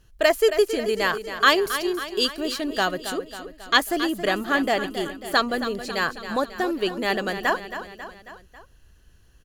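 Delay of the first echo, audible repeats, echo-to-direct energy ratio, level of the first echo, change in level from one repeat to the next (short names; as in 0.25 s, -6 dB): 0.272 s, 4, -9.5 dB, -11.0 dB, -5.0 dB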